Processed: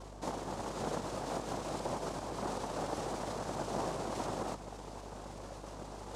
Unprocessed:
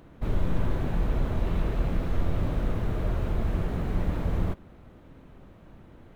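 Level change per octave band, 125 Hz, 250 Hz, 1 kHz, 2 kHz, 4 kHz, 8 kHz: -17.0 dB, -8.5 dB, +2.5 dB, -5.0 dB, +2.0 dB, no reading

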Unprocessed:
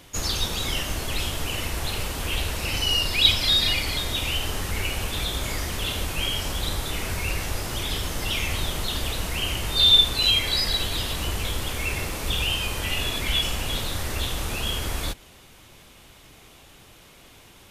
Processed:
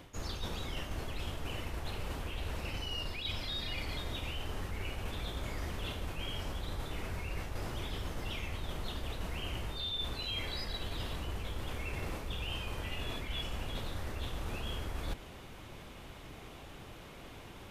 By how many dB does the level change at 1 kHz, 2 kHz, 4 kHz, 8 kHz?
-10.5 dB, -14.0 dB, -18.5 dB, -20.5 dB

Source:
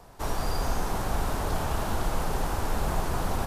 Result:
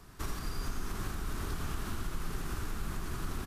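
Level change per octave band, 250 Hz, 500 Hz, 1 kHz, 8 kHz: -7.5 dB, -14.0 dB, -13.5 dB, -7.0 dB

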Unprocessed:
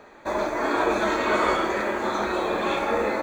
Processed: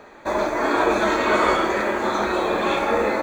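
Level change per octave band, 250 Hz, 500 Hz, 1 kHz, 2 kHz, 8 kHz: +3.5 dB, +3.5 dB, +3.5 dB, +3.5 dB, +3.5 dB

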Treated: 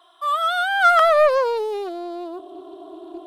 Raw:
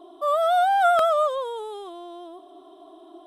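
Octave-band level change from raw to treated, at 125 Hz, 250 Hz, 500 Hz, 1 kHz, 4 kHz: no reading, +9.5 dB, +4.0 dB, +2.0 dB, +7.0 dB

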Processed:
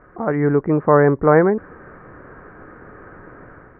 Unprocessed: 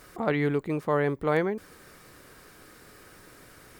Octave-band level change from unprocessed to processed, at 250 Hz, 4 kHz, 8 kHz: +11.0 dB, under -20 dB, under -25 dB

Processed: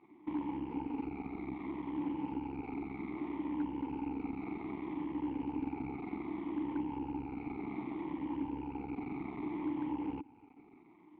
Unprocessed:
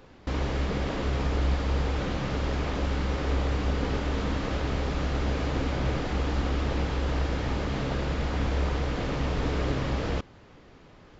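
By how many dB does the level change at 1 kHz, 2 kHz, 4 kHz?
-9.5 dB, -17.5 dB, under -25 dB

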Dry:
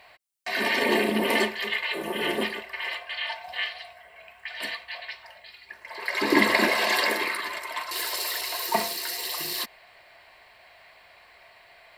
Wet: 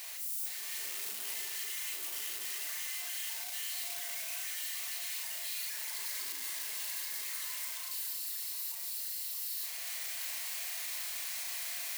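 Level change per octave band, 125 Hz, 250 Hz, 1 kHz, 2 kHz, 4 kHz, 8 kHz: under -30 dB, under -35 dB, -23.0 dB, -17.0 dB, -10.0 dB, +1.5 dB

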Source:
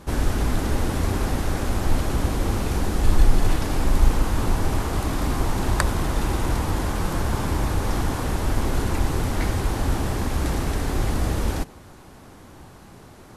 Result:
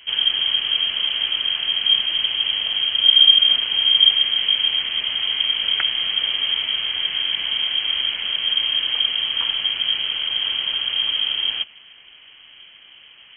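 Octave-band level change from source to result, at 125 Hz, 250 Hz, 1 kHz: under -25 dB, under -20 dB, -11.0 dB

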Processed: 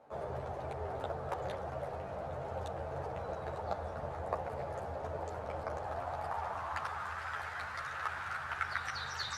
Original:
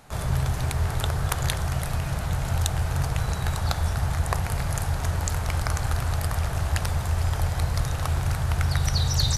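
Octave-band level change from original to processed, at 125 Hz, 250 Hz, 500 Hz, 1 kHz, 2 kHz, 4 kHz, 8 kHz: -22.5 dB, -15.5 dB, -2.5 dB, -5.0 dB, -6.5 dB, -15.5 dB, -23.0 dB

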